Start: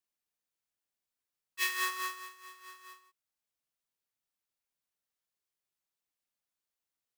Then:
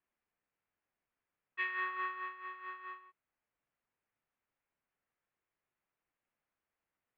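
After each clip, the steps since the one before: inverse Chebyshev low-pass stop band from 5.9 kHz, stop band 50 dB; compression 6:1, threshold -41 dBFS, peak gain reduction 11 dB; trim +7 dB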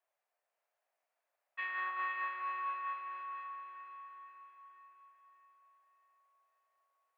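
peak limiter -29.5 dBFS, peak gain reduction 5.5 dB; ladder high-pass 570 Hz, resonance 65%; echo that smears into a reverb 519 ms, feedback 48%, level -4 dB; trim +10.5 dB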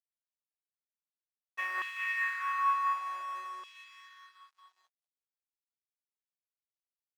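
crossover distortion -56 dBFS; LFO high-pass saw down 0.55 Hz 390–3000 Hz; trim +4 dB

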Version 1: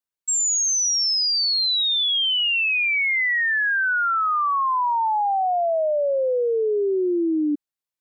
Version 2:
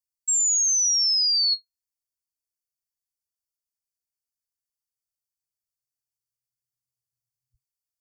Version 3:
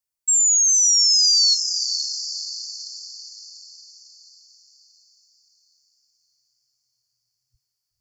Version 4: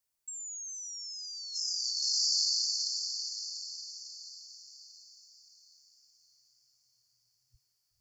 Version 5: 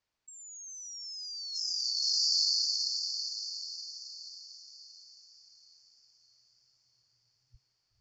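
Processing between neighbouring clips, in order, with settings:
FFT band-reject 120–4300 Hz
echo that smears into a reverb 502 ms, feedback 52%, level -8.5 dB; trim +4.5 dB
compressor with a negative ratio -30 dBFS, ratio -1; trim -6 dB
Bessel low-pass 3.7 kHz, order 4; trim +7 dB

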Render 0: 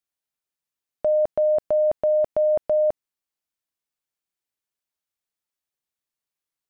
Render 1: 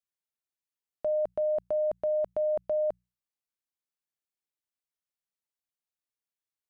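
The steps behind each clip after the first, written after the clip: hum notches 60/120/180 Hz; trim -8 dB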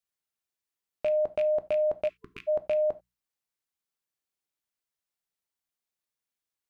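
rattle on loud lows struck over -45 dBFS, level -31 dBFS; gated-style reverb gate 110 ms falling, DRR 11.5 dB; spectral selection erased 2.08–2.48 s, 450–1000 Hz; trim +2.5 dB

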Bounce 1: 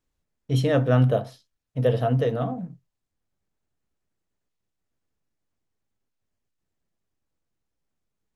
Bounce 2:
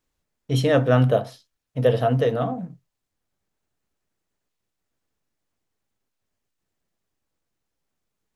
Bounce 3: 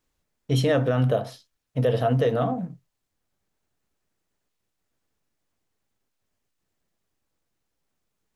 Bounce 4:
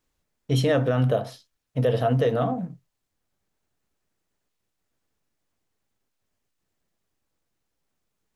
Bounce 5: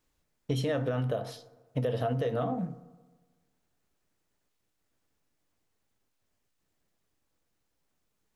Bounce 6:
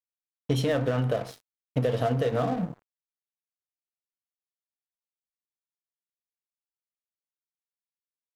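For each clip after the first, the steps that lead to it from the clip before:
bass shelf 260 Hz -5.5 dB; trim +4.5 dB
compression 2:1, threshold -19 dBFS, peak gain reduction 4.5 dB; peak limiter -14 dBFS, peak gain reduction 6.5 dB; trim +1.5 dB
no audible change
compression 12:1, threshold -26 dBFS, peak gain reduction 9.5 dB; FDN reverb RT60 1.4 s, low-frequency decay 1×, high-frequency decay 0.4×, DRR 15 dB
crossover distortion -44 dBFS; trim +5.5 dB

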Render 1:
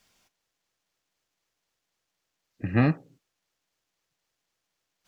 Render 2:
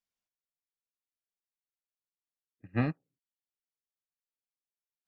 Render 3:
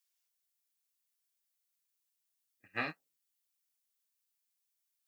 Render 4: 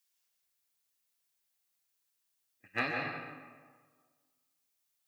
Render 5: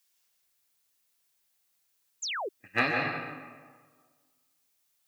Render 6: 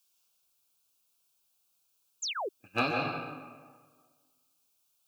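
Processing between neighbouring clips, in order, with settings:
upward expansion 2.5:1, over -33 dBFS; trim -5.5 dB
bass shelf 390 Hz -12 dB; flange 1.2 Hz, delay 5.8 ms, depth 7 ms, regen -32%; tilt EQ +3.5 dB/octave; trim +4.5 dB
hard clipper -24 dBFS, distortion -30 dB; reverberation RT60 1.6 s, pre-delay 118 ms, DRR 1 dB; trim +3 dB
painted sound fall, 2.22–2.49 s, 340–7700 Hz -40 dBFS; trim +6.5 dB
Butterworth band-stop 1.9 kHz, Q 2.3

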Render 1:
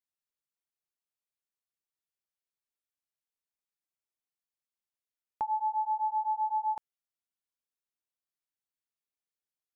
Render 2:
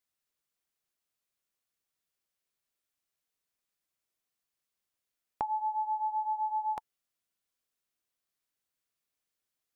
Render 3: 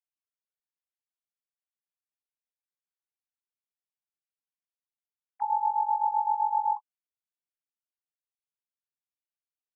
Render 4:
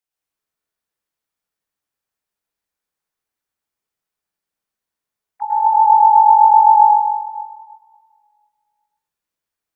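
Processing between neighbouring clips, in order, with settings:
band-stop 880 Hz, Q 12; trim +6.5 dB
formants replaced by sine waves; trim +5.5 dB
reverberation RT60 1.9 s, pre-delay 98 ms, DRR -7 dB; trim +5.5 dB

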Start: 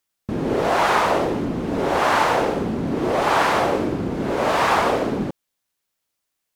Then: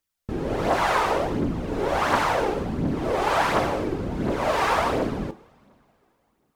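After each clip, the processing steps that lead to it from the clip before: bass shelf 72 Hz +9 dB; two-slope reverb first 0.39 s, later 3.4 s, from -22 dB, DRR 13 dB; phaser 1.4 Hz, delay 2.7 ms, feedback 41%; trim -5 dB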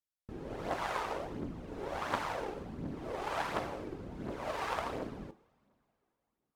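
Chebyshev shaper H 3 -14 dB, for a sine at -8 dBFS; trim -8.5 dB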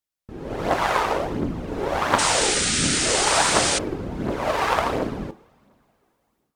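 level rider gain up to 9.5 dB; painted sound noise, 2.18–3.79 s, 1.2–9.6 kHz -28 dBFS; trim +5 dB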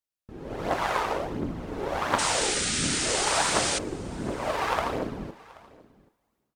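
delay 780 ms -23 dB; trim -5.5 dB

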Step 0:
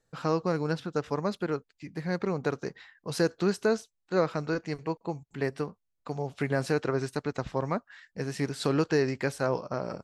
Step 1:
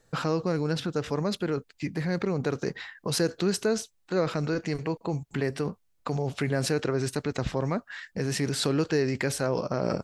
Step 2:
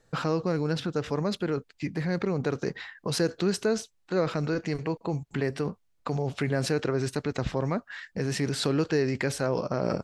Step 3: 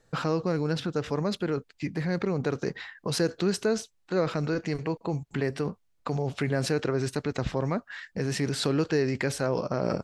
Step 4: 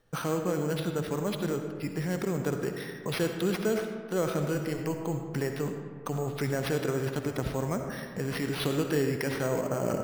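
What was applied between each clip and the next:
dynamic bell 1 kHz, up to -5 dB, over -42 dBFS, Q 1; in parallel at +1 dB: compressor with a negative ratio -38 dBFS, ratio -1
treble shelf 8.8 kHz -8 dB
no audible change
careless resampling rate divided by 6×, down none, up hold; on a send at -5 dB: reverberation RT60 1.9 s, pre-delay 48 ms; on the sum: trim -3 dB

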